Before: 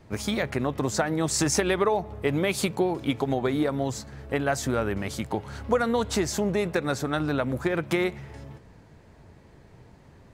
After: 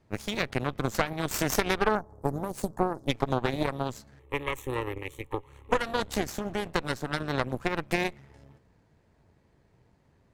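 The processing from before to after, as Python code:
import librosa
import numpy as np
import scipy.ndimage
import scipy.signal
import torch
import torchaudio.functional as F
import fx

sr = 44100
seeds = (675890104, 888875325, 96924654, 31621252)

y = fx.cheby1_bandstop(x, sr, low_hz=1000.0, high_hz=6300.0, order=2, at=(1.95, 3.08))
y = fx.cheby_harmonics(y, sr, harmonics=(3, 4, 7), levels_db=(-14, -12, -33), full_scale_db=-10.0)
y = fx.fixed_phaser(y, sr, hz=1000.0, stages=8, at=(4.19, 5.72))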